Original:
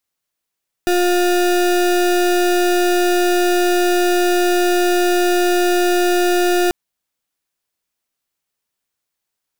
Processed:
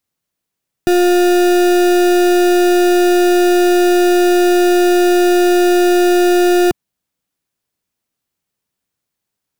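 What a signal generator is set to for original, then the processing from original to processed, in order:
pulse 355 Hz, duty 33% -15 dBFS 5.84 s
peaking EQ 140 Hz +10 dB 2.9 oct

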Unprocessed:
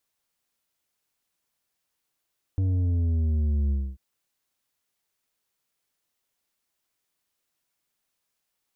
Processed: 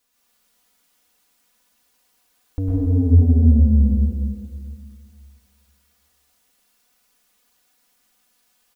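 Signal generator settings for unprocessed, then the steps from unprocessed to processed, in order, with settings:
sub drop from 96 Hz, over 1.39 s, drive 7.5 dB, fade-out 0.26 s, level -22 dB
comb 4.1 ms, depth 89%; in parallel at -0.5 dB: peak limiter -24.5 dBFS; on the sum: plate-style reverb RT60 2.1 s, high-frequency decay 0.9×, pre-delay 90 ms, DRR -6 dB

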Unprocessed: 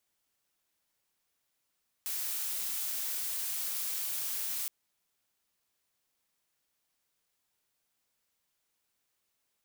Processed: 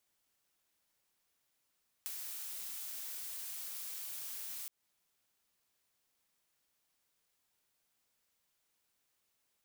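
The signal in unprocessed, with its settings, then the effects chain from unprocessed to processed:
noise blue, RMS -35 dBFS 2.62 s
compression 12:1, threshold -40 dBFS

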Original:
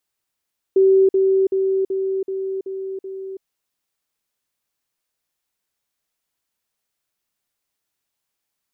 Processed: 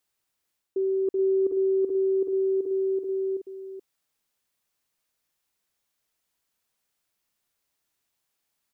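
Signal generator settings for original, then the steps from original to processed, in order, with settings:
level ladder 384 Hz -10 dBFS, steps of -3 dB, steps 7, 0.33 s 0.05 s
reverse; compression 6:1, threshold -25 dBFS; reverse; delay 427 ms -7.5 dB

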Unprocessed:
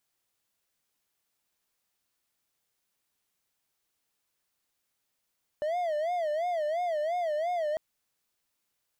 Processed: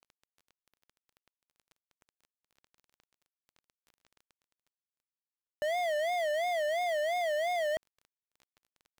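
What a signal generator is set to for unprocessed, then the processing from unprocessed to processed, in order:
siren wail 594–719 Hz 2.9 per s triangle -25 dBFS 2.15 s
dead-time distortion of 0.26 ms; treble shelf 7.1 kHz -9 dB; reverse; upward compressor, threshold -40 dBFS; reverse

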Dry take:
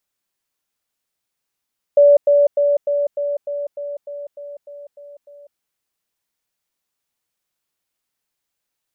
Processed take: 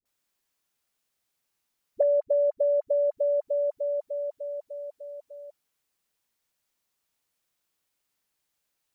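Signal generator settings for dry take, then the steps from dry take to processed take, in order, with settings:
level ladder 576 Hz -6.5 dBFS, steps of -3 dB, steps 12, 0.20 s 0.10 s
compression 6:1, threshold -22 dBFS; phase dispersion highs, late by 56 ms, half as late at 480 Hz

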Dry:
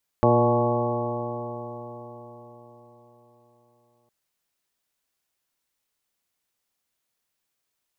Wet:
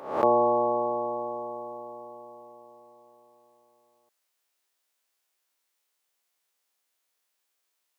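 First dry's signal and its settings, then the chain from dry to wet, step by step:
stretched partials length 3.86 s, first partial 118 Hz, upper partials -2/-1/-1/1.5/-7.5/-1/-15.5/-4 dB, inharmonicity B 0.0012, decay 4.59 s, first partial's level -21.5 dB
reverse spectral sustain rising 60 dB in 0.57 s; high-pass 390 Hz 12 dB/octave; attacks held to a fixed rise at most 380 dB/s

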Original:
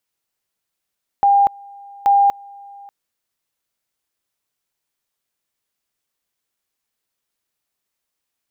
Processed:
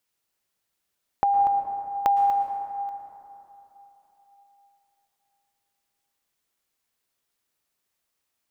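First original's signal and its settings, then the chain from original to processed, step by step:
two-level tone 802 Hz -9.5 dBFS, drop 26.5 dB, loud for 0.24 s, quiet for 0.59 s, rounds 2
compression, threshold -21 dBFS; plate-style reverb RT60 3.5 s, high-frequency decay 0.35×, pre-delay 100 ms, DRR 6 dB

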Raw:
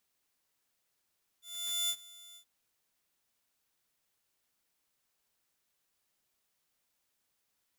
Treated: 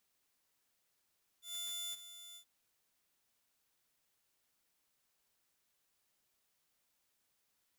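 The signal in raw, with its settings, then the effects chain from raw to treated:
ADSR saw 3.5 kHz, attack 474 ms, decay 62 ms, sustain -22 dB, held 0.94 s, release 86 ms -26.5 dBFS
peak limiter -37.5 dBFS

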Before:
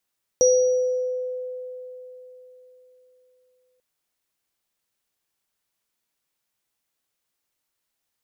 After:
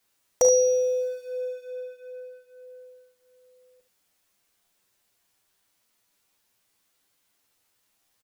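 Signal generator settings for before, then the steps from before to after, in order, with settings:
sine partials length 3.39 s, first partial 505 Hz, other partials 5.78 kHz, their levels -5 dB, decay 3.84 s, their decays 0.89 s, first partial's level -13 dB
companding laws mixed up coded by mu; touch-sensitive flanger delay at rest 10.4 ms, full sweep at -21.5 dBFS; on a send: early reflections 36 ms -10.5 dB, 49 ms -11.5 dB, 72 ms -11.5 dB

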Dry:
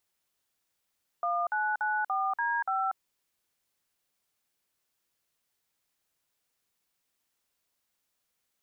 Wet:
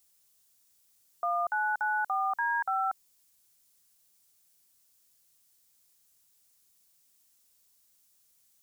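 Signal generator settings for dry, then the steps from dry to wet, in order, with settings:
DTMF "1994D5", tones 239 ms, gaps 50 ms, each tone -29 dBFS
tone controls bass +6 dB, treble +14 dB

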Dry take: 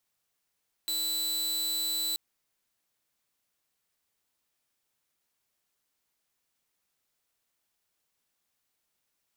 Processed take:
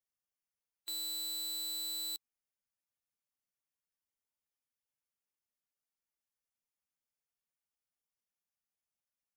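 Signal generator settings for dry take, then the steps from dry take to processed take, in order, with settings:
tone saw 3.98 kHz -26 dBFS 1.28 s
expander on every frequency bin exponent 1.5; peak limiter -34 dBFS

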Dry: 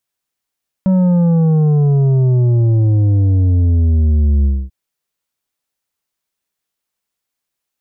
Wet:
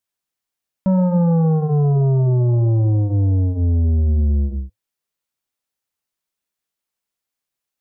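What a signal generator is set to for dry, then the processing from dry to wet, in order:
sub drop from 190 Hz, over 3.84 s, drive 7.5 dB, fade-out 0.25 s, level -10 dB
dynamic bell 900 Hz, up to +7 dB, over -35 dBFS, Q 0.76; flange 0.61 Hz, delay 2.9 ms, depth 8.4 ms, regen -77%

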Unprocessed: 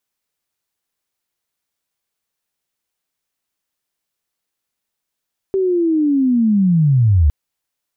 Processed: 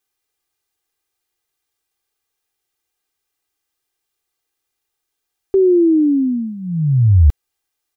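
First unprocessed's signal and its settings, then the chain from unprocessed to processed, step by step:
sweep linear 390 Hz -> 68 Hz -13.5 dBFS -> -8.5 dBFS 1.76 s
comb 2.5 ms, depth 83%

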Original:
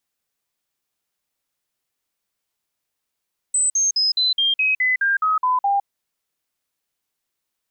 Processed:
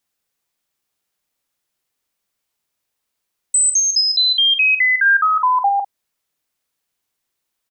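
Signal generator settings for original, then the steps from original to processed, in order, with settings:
stepped sine 8.06 kHz down, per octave 3, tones 11, 0.16 s, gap 0.05 s -15.5 dBFS
in parallel at +2 dB: level held to a coarse grid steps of 23 dB; on the sum: doubling 47 ms -9.5 dB

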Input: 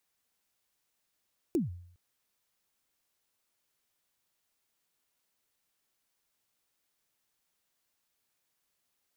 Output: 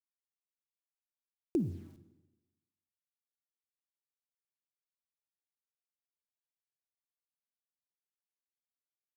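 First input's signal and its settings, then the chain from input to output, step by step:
kick drum length 0.41 s, from 380 Hz, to 88 Hz, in 148 ms, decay 0.64 s, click on, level -22.5 dB
treble shelf 7.5 kHz -11.5 dB; bit crusher 11-bit; Schroeder reverb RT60 1.1 s, DRR 12.5 dB

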